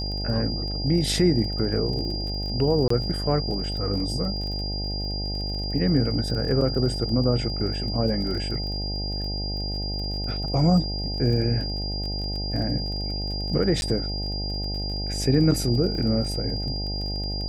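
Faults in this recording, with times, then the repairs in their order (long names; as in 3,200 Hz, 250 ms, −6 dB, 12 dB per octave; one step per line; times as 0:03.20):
mains buzz 50 Hz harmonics 17 −30 dBFS
surface crackle 30 per second −33 dBFS
whistle 4,800 Hz −31 dBFS
0:02.88–0:02.90: drop-out 24 ms
0:13.81–0:13.82: drop-out 11 ms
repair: click removal
notch filter 4,800 Hz, Q 30
hum removal 50 Hz, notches 17
repair the gap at 0:02.88, 24 ms
repair the gap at 0:13.81, 11 ms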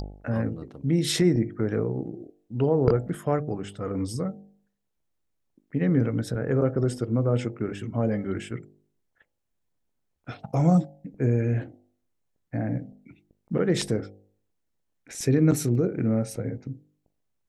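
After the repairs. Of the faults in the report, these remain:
none of them is left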